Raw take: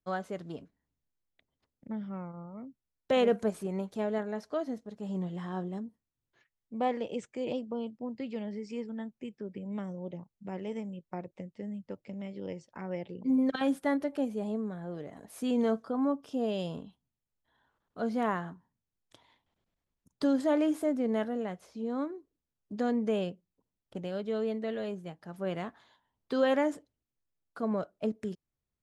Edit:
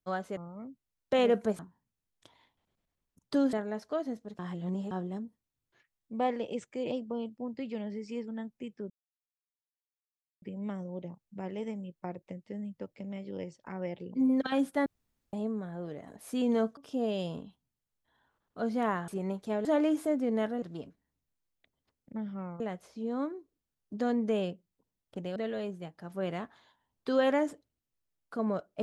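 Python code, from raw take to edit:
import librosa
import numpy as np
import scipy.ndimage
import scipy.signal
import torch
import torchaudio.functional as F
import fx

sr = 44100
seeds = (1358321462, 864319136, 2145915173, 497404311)

y = fx.edit(x, sr, fx.move(start_s=0.37, length_s=1.98, to_s=21.39),
    fx.swap(start_s=3.57, length_s=0.57, other_s=18.48, other_length_s=1.94),
    fx.reverse_span(start_s=5.0, length_s=0.52),
    fx.insert_silence(at_s=9.51, length_s=1.52),
    fx.room_tone_fill(start_s=13.95, length_s=0.47),
    fx.cut(start_s=15.86, length_s=0.31),
    fx.cut(start_s=24.15, length_s=0.45), tone=tone)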